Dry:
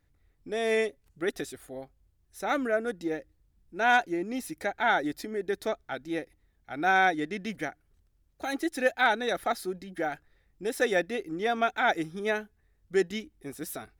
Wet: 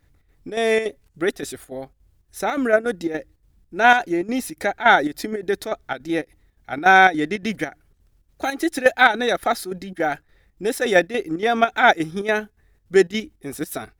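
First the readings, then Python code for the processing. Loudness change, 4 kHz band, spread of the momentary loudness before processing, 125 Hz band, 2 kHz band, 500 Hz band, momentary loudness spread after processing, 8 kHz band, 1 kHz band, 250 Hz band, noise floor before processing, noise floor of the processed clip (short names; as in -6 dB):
+9.0 dB, +9.0 dB, 14 LU, +9.0 dB, +9.5 dB, +8.5 dB, 16 LU, +8.5 dB, +9.5 dB, +8.5 dB, -69 dBFS, -62 dBFS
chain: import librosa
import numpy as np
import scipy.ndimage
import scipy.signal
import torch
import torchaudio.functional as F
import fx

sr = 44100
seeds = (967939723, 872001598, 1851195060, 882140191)

p1 = fx.level_steps(x, sr, step_db=12)
p2 = x + F.gain(torch.from_numpy(p1), 1.0).numpy()
p3 = fx.chopper(p2, sr, hz=3.5, depth_pct=60, duty_pct=75)
y = F.gain(torch.from_numpy(p3), 5.5).numpy()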